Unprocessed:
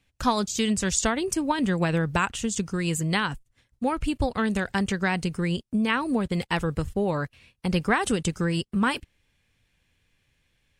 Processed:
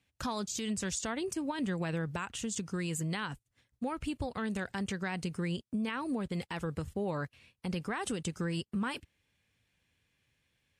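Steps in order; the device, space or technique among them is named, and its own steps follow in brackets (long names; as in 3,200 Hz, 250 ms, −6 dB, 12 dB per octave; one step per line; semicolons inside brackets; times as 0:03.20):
podcast mastering chain (high-pass filter 70 Hz; downward compressor 2.5 to 1, threshold −26 dBFS, peak gain reduction 6.5 dB; brickwall limiter −20 dBFS, peak gain reduction 7 dB; level −5 dB; MP3 96 kbit/s 32,000 Hz)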